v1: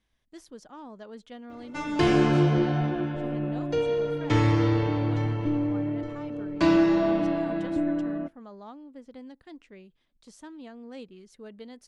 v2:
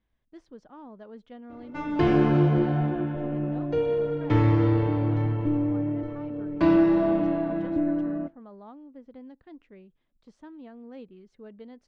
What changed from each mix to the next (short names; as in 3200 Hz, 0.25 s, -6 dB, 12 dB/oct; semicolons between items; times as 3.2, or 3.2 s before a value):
background: send +6.5 dB; master: add tape spacing loss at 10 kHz 29 dB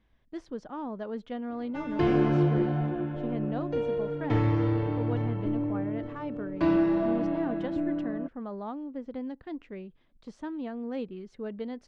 speech +9.0 dB; background: send off